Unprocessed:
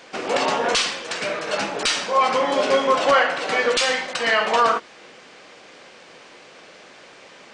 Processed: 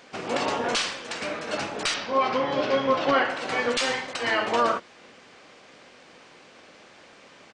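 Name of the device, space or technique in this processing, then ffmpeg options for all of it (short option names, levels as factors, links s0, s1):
octave pedal: -filter_complex "[0:a]asplit=2[s0][s1];[s1]asetrate=22050,aresample=44100,atempo=2,volume=0.447[s2];[s0][s2]amix=inputs=2:normalize=0,asettb=1/sr,asplit=3[s3][s4][s5];[s3]atrim=end=1.944[s6];[s4]atrim=start=1.94:end=3.25,asetpts=PTS-STARTPTS,afade=t=in:d=0.004:c=qsin,afade=t=out:st=1.306:d=0.004:c=qsin,lowpass=f=5300:w=0.5412,lowpass=f=5300:w=1.3066[s7];[s5]atrim=start=3.246[s8];[s6][s7]acrossfade=d=0.004:c1=hsin:c2=qsin[s9];[s9][s8]acrossfade=d=0.004:c1=qsin:c2=hsin,volume=0.501"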